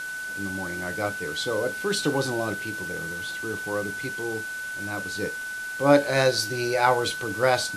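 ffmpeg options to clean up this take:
-af "bandreject=f=1.5k:w=30,afwtdn=0.0079"

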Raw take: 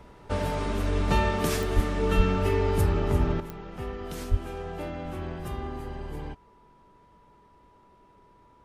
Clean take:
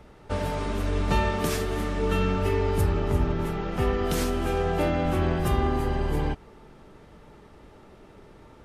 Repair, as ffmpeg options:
-filter_complex "[0:a]adeclick=t=4,bandreject=f=980:w=30,asplit=3[a][b][c];[a]afade=t=out:st=1.75:d=0.02[d];[b]highpass=f=140:w=0.5412,highpass=f=140:w=1.3066,afade=t=in:st=1.75:d=0.02,afade=t=out:st=1.87:d=0.02[e];[c]afade=t=in:st=1.87:d=0.02[f];[d][e][f]amix=inputs=3:normalize=0,asplit=3[g][h][i];[g]afade=t=out:st=2.16:d=0.02[j];[h]highpass=f=140:w=0.5412,highpass=f=140:w=1.3066,afade=t=in:st=2.16:d=0.02,afade=t=out:st=2.28:d=0.02[k];[i]afade=t=in:st=2.28:d=0.02[l];[j][k][l]amix=inputs=3:normalize=0,asplit=3[m][n][o];[m]afade=t=out:st=4.3:d=0.02[p];[n]highpass=f=140:w=0.5412,highpass=f=140:w=1.3066,afade=t=in:st=4.3:d=0.02,afade=t=out:st=4.42:d=0.02[q];[o]afade=t=in:st=4.42:d=0.02[r];[p][q][r]amix=inputs=3:normalize=0,asetnsamples=n=441:p=0,asendcmd='3.4 volume volume 10.5dB',volume=0dB"

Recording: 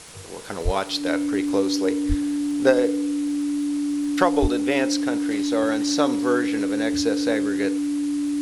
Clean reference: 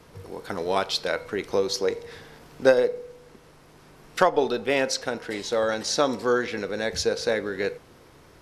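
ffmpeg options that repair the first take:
-filter_complex "[0:a]adeclick=t=4,bandreject=f=290:w=30,asplit=3[a][b][c];[a]afade=t=out:st=0.64:d=0.02[d];[b]highpass=f=140:w=0.5412,highpass=f=140:w=1.3066,afade=t=in:st=0.64:d=0.02,afade=t=out:st=0.76:d=0.02[e];[c]afade=t=in:st=0.76:d=0.02[f];[d][e][f]amix=inputs=3:normalize=0,asplit=3[g][h][i];[g]afade=t=out:st=2.08:d=0.02[j];[h]highpass=f=140:w=0.5412,highpass=f=140:w=1.3066,afade=t=in:st=2.08:d=0.02,afade=t=out:st=2.2:d=0.02[k];[i]afade=t=in:st=2.2:d=0.02[l];[j][k][l]amix=inputs=3:normalize=0,asplit=3[m][n][o];[m]afade=t=out:st=4.41:d=0.02[p];[n]highpass=f=140:w=0.5412,highpass=f=140:w=1.3066,afade=t=in:st=4.41:d=0.02,afade=t=out:st=4.53:d=0.02[q];[o]afade=t=in:st=4.53:d=0.02[r];[p][q][r]amix=inputs=3:normalize=0,afwtdn=0.0089"

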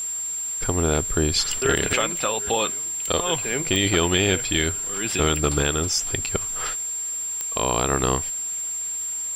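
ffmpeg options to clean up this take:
-af "adeclick=t=4,bandreject=f=7.4k:w=30,afwtdn=0.0056"

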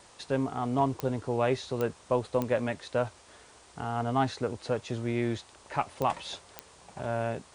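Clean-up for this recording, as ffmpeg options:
-af "adeclick=t=4,afftdn=nr=19:nf=-56"

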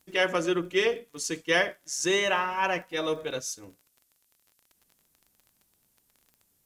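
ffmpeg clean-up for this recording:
-af "adeclick=t=4,agate=range=-21dB:threshold=-63dB"

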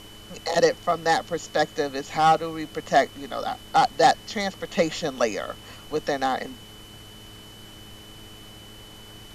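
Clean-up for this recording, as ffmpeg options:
-af "bandreject=f=105.8:t=h:w=4,bandreject=f=211.6:t=h:w=4,bandreject=f=317.4:t=h:w=4,bandreject=f=423.2:t=h:w=4,bandreject=f=3k:w=30,afftdn=nr=23:nf=-45"

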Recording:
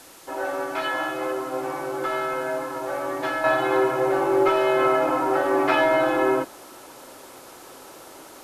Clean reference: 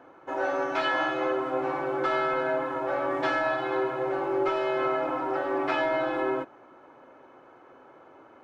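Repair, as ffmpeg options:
-af "adeclick=t=4,afwtdn=0.0045,asetnsamples=n=441:p=0,asendcmd='3.44 volume volume -7dB',volume=0dB"

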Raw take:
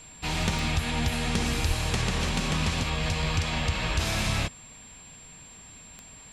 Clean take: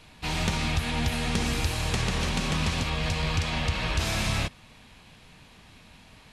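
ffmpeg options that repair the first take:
-filter_complex "[0:a]adeclick=t=4,bandreject=f=7.4k:w=30,asplit=3[a][b][c];[a]afade=t=out:st=1.67:d=0.02[d];[b]highpass=f=140:w=0.5412,highpass=f=140:w=1.3066,afade=t=in:st=1.67:d=0.02,afade=t=out:st=1.79:d=0.02[e];[c]afade=t=in:st=1.79:d=0.02[f];[d][e][f]amix=inputs=3:normalize=0"

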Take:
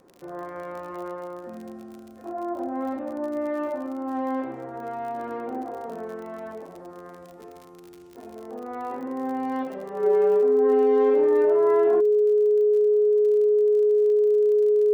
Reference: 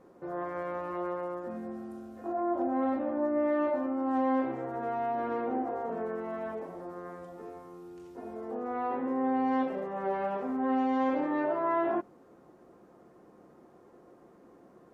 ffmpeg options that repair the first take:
-af "adeclick=t=4,bandreject=f=420:w=30"

